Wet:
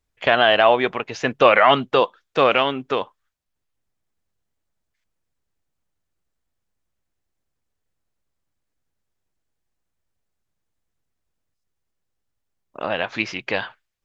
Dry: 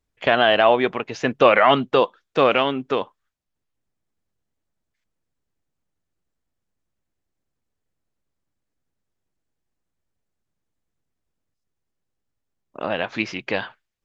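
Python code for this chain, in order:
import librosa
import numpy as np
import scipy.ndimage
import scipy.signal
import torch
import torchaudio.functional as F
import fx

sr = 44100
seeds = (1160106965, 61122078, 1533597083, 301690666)

y = fx.peak_eq(x, sr, hz=240.0, db=-4.5, octaves=2.1)
y = y * librosa.db_to_amplitude(2.0)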